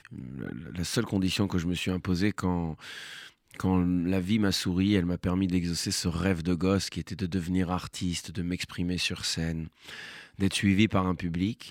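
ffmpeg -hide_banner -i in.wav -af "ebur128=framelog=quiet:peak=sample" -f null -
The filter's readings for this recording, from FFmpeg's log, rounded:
Integrated loudness:
  I:         -28.8 LUFS
  Threshold: -39.2 LUFS
Loudness range:
  LRA:         3.9 LU
  Threshold: -49.2 LUFS
  LRA low:   -31.3 LUFS
  LRA high:  -27.4 LUFS
Sample peak:
  Peak:       -9.5 dBFS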